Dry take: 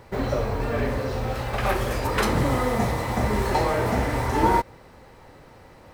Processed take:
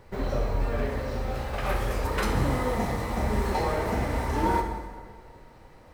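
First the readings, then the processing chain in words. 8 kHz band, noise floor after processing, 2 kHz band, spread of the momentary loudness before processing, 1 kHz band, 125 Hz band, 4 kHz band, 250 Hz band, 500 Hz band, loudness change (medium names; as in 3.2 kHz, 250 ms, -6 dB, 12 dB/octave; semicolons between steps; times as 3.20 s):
-5.0 dB, -51 dBFS, -5.0 dB, 6 LU, -5.0 dB, -3.5 dB, -5.0 dB, -4.0 dB, -4.5 dB, -4.0 dB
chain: bass shelf 65 Hz +11 dB; hum notches 60/120 Hz; plate-style reverb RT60 1.7 s, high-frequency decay 0.75×, DRR 3.5 dB; trim -6.5 dB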